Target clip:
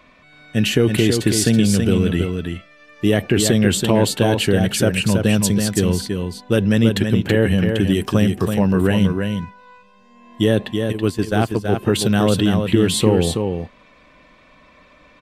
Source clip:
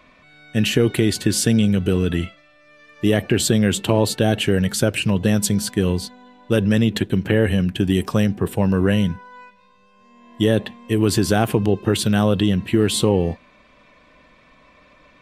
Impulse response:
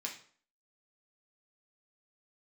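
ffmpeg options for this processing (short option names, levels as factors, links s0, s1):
-filter_complex "[0:a]asplit=3[s0][s1][s2];[s0]afade=t=out:st=10.91:d=0.02[s3];[s1]agate=range=0.178:threshold=0.178:ratio=16:detection=peak,afade=t=in:st=10.91:d=0.02,afade=t=out:st=11.71:d=0.02[s4];[s2]afade=t=in:st=11.71:d=0.02[s5];[s3][s4][s5]amix=inputs=3:normalize=0,asplit=2[s6][s7];[s7]aecho=0:1:327:0.531[s8];[s6][s8]amix=inputs=2:normalize=0,volume=1.12"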